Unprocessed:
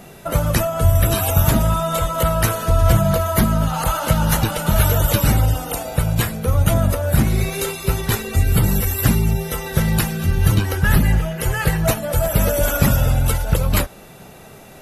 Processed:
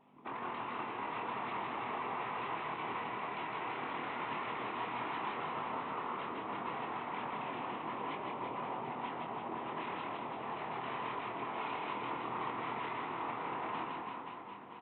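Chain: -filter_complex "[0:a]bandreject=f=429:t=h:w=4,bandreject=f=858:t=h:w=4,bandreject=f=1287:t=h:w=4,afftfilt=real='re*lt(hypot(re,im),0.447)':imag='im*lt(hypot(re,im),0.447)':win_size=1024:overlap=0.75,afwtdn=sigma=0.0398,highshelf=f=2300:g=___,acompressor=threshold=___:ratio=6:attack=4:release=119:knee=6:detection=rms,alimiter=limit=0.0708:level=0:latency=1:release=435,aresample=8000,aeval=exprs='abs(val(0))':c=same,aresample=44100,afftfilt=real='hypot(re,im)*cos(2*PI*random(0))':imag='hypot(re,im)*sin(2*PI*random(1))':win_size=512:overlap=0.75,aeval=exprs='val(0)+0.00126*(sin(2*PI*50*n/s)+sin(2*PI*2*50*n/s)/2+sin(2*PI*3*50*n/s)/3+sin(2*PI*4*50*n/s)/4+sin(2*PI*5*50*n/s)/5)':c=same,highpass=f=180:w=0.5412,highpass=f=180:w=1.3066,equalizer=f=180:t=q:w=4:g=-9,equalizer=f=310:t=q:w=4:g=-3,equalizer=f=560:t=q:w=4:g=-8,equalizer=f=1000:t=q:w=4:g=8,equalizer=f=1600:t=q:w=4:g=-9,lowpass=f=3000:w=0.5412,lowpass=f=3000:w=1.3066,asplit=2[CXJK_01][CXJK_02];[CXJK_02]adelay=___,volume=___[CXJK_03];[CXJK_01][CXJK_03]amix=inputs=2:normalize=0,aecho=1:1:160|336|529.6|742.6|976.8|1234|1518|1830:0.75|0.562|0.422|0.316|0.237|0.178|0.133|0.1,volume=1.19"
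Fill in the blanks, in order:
-8, 0.0355, 25, 0.562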